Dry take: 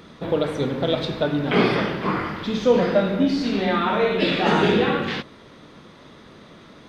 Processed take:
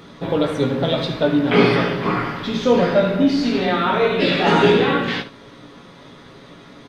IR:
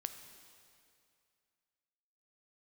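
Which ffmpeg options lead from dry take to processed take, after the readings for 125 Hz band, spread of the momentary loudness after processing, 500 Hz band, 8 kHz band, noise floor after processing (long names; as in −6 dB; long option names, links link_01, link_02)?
+3.5 dB, 8 LU, +3.5 dB, can't be measured, −43 dBFS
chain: -filter_complex "[0:a]aecho=1:1:7.2:0.36,asplit=2[link_01][link_02];[link_02]aecho=0:1:17|73:0.501|0.224[link_03];[link_01][link_03]amix=inputs=2:normalize=0,volume=2dB"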